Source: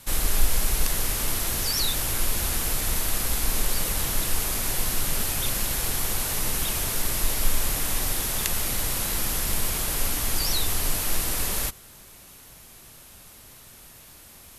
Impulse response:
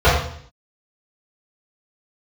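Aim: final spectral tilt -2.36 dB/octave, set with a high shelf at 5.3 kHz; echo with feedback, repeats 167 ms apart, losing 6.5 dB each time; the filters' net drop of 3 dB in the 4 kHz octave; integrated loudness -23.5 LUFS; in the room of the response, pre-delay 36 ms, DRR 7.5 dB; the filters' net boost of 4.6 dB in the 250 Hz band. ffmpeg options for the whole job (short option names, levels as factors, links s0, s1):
-filter_complex "[0:a]equalizer=f=250:t=o:g=6,equalizer=f=4000:t=o:g=-5.5,highshelf=f=5300:g=3.5,aecho=1:1:167|334|501|668|835|1002:0.473|0.222|0.105|0.0491|0.0231|0.0109,asplit=2[s0][s1];[1:a]atrim=start_sample=2205,adelay=36[s2];[s1][s2]afir=irnorm=-1:irlink=0,volume=0.02[s3];[s0][s3]amix=inputs=2:normalize=0,volume=0.841"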